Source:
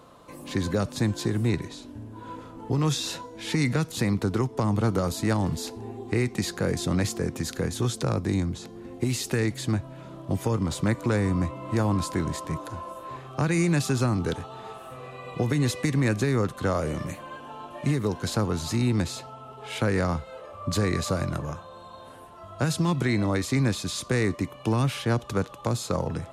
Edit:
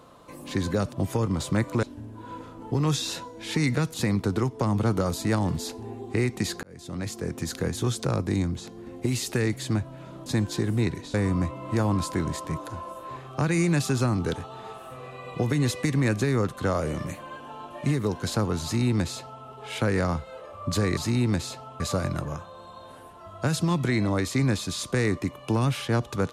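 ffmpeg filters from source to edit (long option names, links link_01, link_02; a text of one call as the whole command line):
ffmpeg -i in.wav -filter_complex "[0:a]asplit=8[link_01][link_02][link_03][link_04][link_05][link_06][link_07][link_08];[link_01]atrim=end=0.932[link_09];[link_02]atrim=start=10.238:end=11.142[link_10];[link_03]atrim=start=1.808:end=6.61,asetpts=PTS-STARTPTS,afade=type=out:start_time=4.798:duration=0.004:curve=hsin[link_11];[link_04]atrim=start=6.61:end=10.242,asetpts=PTS-STARTPTS,afade=type=in:duration=0.89[link_12];[link_05]atrim=start=0.928:end=1.812[link_13];[link_06]atrim=start=11.138:end=20.972[link_14];[link_07]atrim=start=18.628:end=19.462[link_15];[link_08]atrim=start=20.968[link_16];[link_09][link_10]acrossfade=duration=0.004:curve1=hsin:curve2=hsin[link_17];[link_11][link_12]concat=n=2:v=0:a=1[link_18];[link_17][link_18]acrossfade=duration=0.004:curve1=hsin:curve2=hsin[link_19];[link_19][link_13]acrossfade=duration=0.004:curve1=hsin:curve2=hsin[link_20];[link_20][link_14]acrossfade=duration=0.004:curve1=hsin:curve2=hsin[link_21];[link_21][link_15]acrossfade=duration=0.004:curve1=hsin:curve2=hsin[link_22];[link_22][link_16]acrossfade=duration=0.004:curve1=hsin:curve2=hsin" out.wav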